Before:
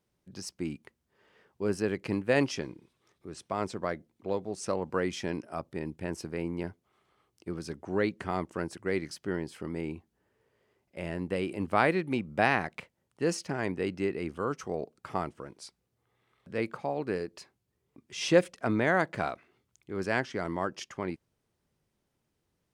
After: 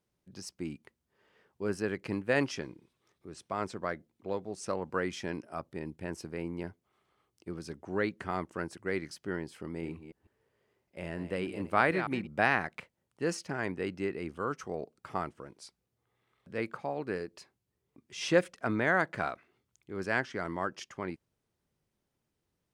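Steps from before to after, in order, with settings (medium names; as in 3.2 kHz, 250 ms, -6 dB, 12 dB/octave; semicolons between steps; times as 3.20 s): 9.67–12.27 s: chunks repeated in reverse 150 ms, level -10 dB; dynamic bell 1.5 kHz, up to +5 dB, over -44 dBFS, Q 1.5; trim -3.5 dB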